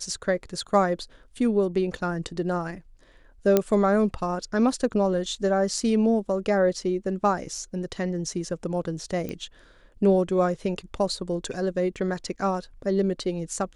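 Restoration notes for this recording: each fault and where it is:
3.57 s: pop -6 dBFS
9.29 s: pop -19 dBFS

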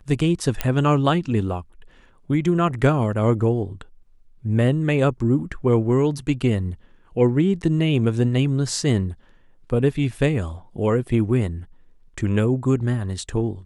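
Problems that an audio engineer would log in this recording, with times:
0.61 s: pop -7 dBFS

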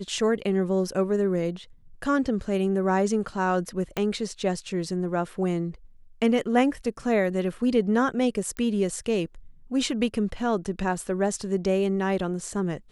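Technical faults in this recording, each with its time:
3.97 s: pop -13 dBFS
8.57 s: pop -19 dBFS

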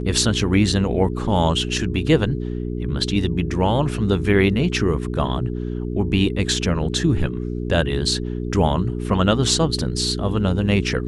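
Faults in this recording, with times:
hum 60 Hz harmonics 7 -26 dBFS

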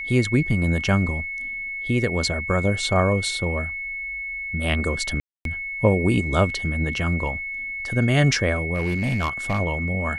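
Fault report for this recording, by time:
whine 2.2 kHz -28 dBFS
5.20–5.45 s: dropout 252 ms
8.75–9.59 s: clipped -18.5 dBFS

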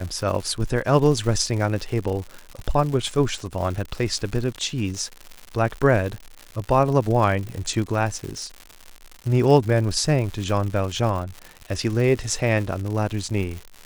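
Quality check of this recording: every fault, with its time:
crackle 170 per s -29 dBFS

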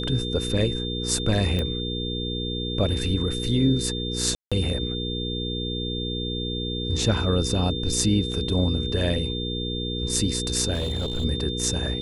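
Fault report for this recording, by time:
hum 60 Hz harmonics 8 -30 dBFS
whine 3.6 kHz -31 dBFS
1.59 s: pop -15 dBFS
4.35–4.52 s: dropout 166 ms
8.32 s: dropout 2.6 ms
10.73–11.25 s: clipped -22.5 dBFS

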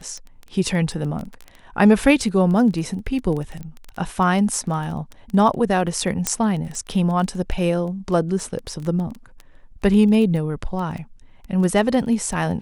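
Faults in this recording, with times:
crackle 14 per s -26 dBFS
3.63 s: pop -23 dBFS
6.27 s: pop -3 dBFS

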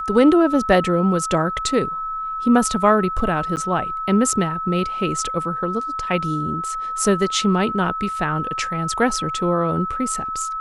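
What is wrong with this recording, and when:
whine 1.3 kHz -24 dBFS
3.56–3.57 s: dropout 9.1 ms

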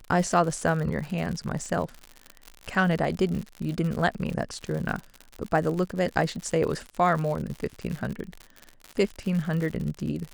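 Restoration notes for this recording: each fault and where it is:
crackle 89 per s -31 dBFS

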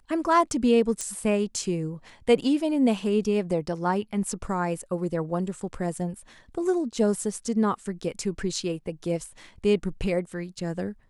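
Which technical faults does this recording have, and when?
1.01 s: pop -17 dBFS

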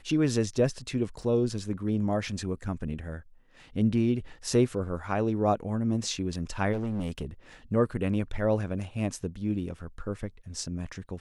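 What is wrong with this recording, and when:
1.22 s: dropout 2.6 ms
6.72–7.25 s: clipped -27.5 dBFS

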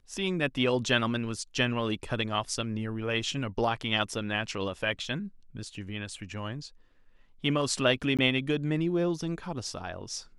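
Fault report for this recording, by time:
8.17–8.19 s: dropout 17 ms

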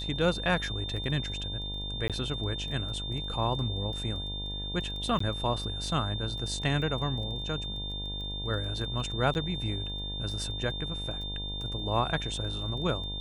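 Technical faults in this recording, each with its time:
buzz 50 Hz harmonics 20 -38 dBFS
crackle 14 per s -38 dBFS
whine 3.6 kHz -36 dBFS
2.08–2.10 s: dropout 17 ms
5.19–5.20 s: dropout 14 ms
9.34–9.35 s: dropout 9.4 ms

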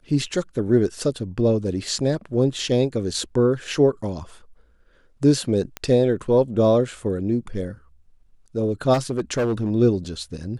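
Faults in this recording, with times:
5.77 s: pop -13 dBFS
8.93–9.71 s: clipped -18 dBFS

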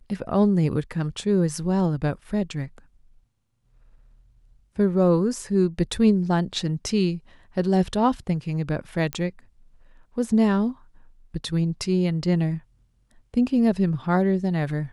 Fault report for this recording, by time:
9.13 s: pop -13 dBFS

